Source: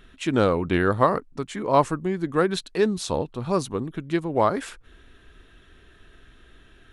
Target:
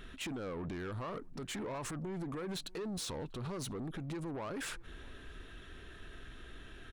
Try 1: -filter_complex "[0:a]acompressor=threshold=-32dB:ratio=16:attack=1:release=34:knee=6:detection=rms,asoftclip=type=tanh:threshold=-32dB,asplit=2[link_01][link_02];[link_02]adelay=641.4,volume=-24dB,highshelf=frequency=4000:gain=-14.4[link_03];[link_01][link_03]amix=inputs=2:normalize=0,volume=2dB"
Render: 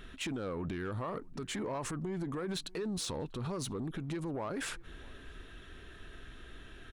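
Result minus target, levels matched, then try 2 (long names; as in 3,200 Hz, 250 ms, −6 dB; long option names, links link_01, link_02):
soft clipping: distortion −7 dB
-filter_complex "[0:a]acompressor=threshold=-32dB:ratio=16:attack=1:release=34:knee=6:detection=rms,asoftclip=type=tanh:threshold=-38.5dB,asplit=2[link_01][link_02];[link_02]adelay=641.4,volume=-24dB,highshelf=frequency=4000:gain=-14.4[link_03];[link_01][link_03]amix=inputs=2:normalize=0,volume=2dB"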